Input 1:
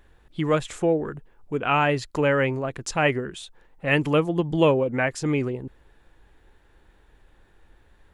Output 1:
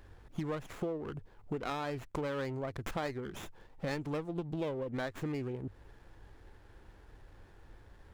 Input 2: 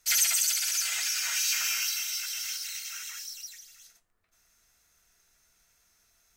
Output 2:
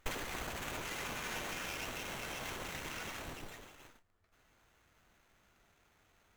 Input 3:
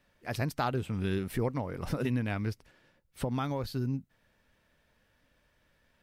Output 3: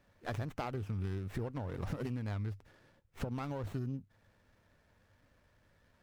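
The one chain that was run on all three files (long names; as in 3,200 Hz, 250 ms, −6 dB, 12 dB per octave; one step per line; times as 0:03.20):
parametric band 99 Hz +10 dB 0.32 octaves
downward compressor 8 to 1, threshold −35 dBFS
windowed peak hold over 9 samples
level +1 dB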